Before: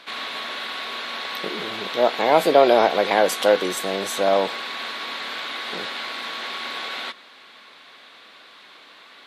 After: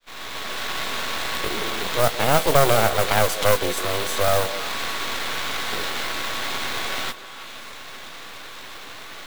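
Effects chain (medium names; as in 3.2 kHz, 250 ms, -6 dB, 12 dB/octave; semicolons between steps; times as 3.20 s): fade-in on the opening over 0.83 s; modulation noise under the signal 12 dB; half-wave rectifier; on a send: repeats whose band climbs or falls 161 ms, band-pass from 440 Hz, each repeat 1.4 oct, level -11 dB; on the sum: three bands compressed up and down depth 40%; trim +4 dB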